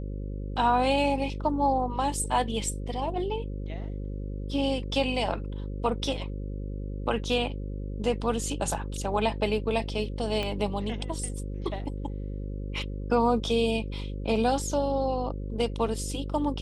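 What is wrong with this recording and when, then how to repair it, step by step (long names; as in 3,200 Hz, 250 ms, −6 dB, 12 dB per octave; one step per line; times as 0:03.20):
mains buzz 50 Hz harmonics 11 −34 dBFS
0:10.43: click −18 dBFS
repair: click removal
hum removal 50 Hz, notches 11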